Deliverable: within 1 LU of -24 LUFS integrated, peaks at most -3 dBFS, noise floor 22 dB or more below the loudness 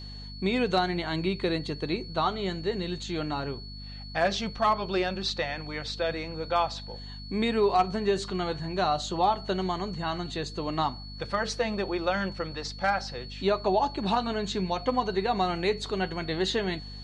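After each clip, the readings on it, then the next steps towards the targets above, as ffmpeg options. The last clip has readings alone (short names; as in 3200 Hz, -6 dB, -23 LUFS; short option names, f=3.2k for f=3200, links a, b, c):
hum 50 Hz; harmonics up to 250 Hz; hum level -40 dBFS; steady tone 4400 Hz; tone level -44 dBFS; loudness -29.0 LUFS; peak -13.5 dBFS; loudness target -24.0 LUFS
-> -af "bandreject=f=50:t=h:w=4,bandreject=f=100:t=h:w=4,bandreject=f=150:t=h:w=4,bandreject=f=200:t=h:w=4,bandreject=f=250:t=h:w=4"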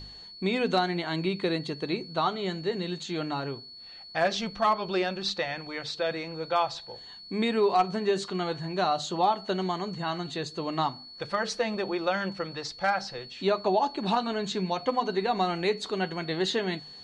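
hum none; steady tone 4400 Hz; tone level -44 dBFS
-> -af "bandreject=f=4.4k:w=30"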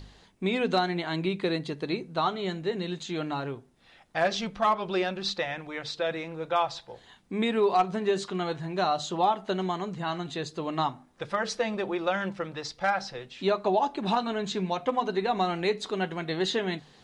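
steady tone none; loudness -29.5 LUFS; peak -14.0 dBFS; loudness target -24.0 LUFS
-> -af "volume=5.5dB"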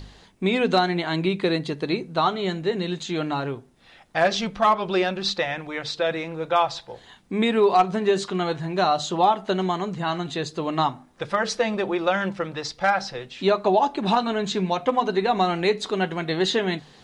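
loudness -24.0 LUFS; peak -8.5 dBFS; noise floor -52 dBFS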